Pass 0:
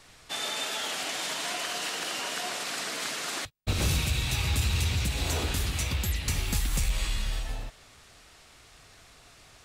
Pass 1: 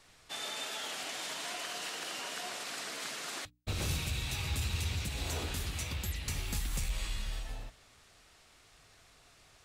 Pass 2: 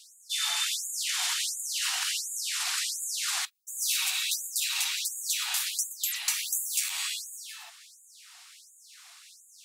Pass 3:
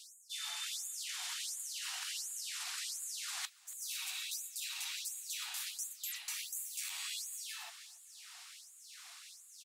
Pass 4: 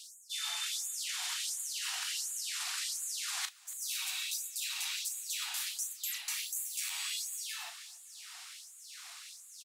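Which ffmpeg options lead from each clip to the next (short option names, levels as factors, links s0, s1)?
-af "bandreject=f=60:t=h:w=6,bandreject=f=120:t=h:w=6,bandreject=f=180:t=h:w=6,bandreject=f=240:t=h:w=6,bandreject=f=300:t=h:w=6,volume=0.447"
-af "highshelf=f=3100:g=8,afftfilt=real='re*gte(b*sr/1024,660*pow(6700/660,0.5+0.5*sin(2*PI*1.4*pts/sr)))':imag='im*gte(b*sr/1024,660*pow(6700/660,0.5+0.5*sin(2*PI*1.4*pts/sr)))':win_size=1024:overlap=0.75,volume=2.11"
-af "areverse,acompressor=threshold=0.0126:ratio=6,areverse,aecho=1:1:281|562|843:0.0708|0.0354|0.0177,volume=0.841"
-filter_complex "[0:a]asplit=2[s0][s1];[s1]adelay=36,volume=0.299[s2];[s0][s2]amix=inputs=2:normalize=0,volume=1.58"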